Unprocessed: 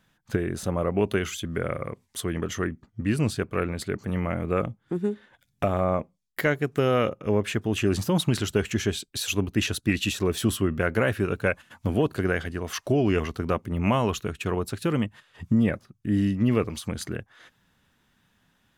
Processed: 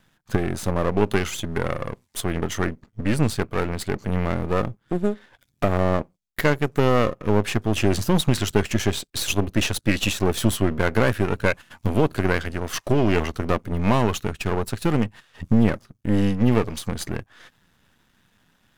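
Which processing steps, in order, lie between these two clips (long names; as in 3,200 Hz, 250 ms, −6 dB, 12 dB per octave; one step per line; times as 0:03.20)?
gain on one half-wave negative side −12 dB
level +7 dB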